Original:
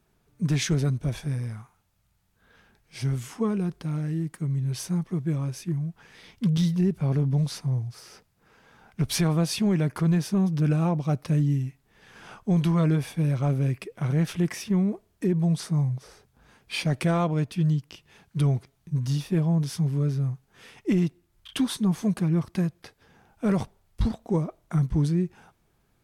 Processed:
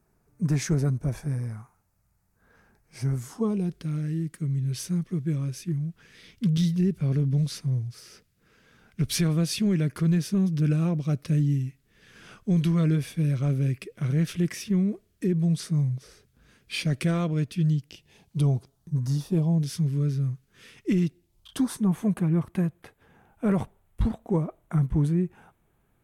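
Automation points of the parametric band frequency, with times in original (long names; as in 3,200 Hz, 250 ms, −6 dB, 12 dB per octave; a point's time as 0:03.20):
parametric band −13.5 dB 0.85 octaves
0:03.18 3,300 Hz
0:03.81 850 Hz
0:17.66 850 Hz
0:19.11 3,100 Hz
0:19.75 800 Hz
0:21.04 800 Hz
0:21.89 5,000 Hz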